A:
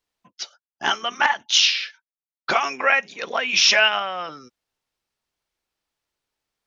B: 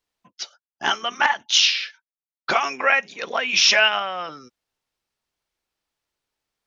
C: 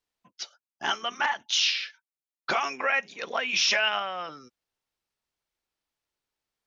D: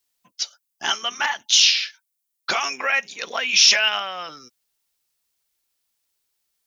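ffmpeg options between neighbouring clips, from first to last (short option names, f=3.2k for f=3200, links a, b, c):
-af anull
-af "alimiter=limit=-9.5dB:level=0:latency=1:release=13,volume=-5dB"
-af "crystalizer=i=4.5:c=0"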